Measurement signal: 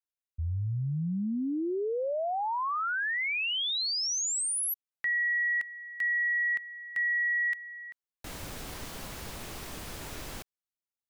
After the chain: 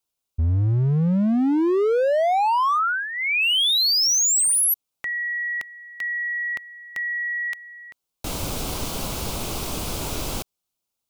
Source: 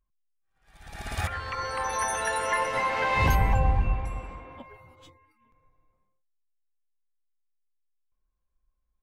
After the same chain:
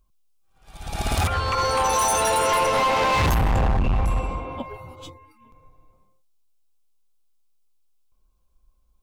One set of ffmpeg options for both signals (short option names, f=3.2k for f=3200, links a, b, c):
-filter_complex "[0:a]equalizer=f=1.8k:t=o:w=0.46:g=-14,asplit=2[a][b];[b]alimiter=limit=-24dB:level=0:latency=1:release=56,volume=-2dB[c];[a][c]amix=inputs=2:normalize=0,asoftclip=type=hard:threshold=-25.5dB,volume=8dB"